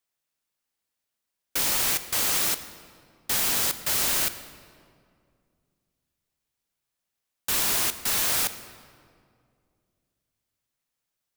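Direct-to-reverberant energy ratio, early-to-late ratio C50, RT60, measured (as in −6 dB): 11.5 dB, 12.5 dB, 2.2 s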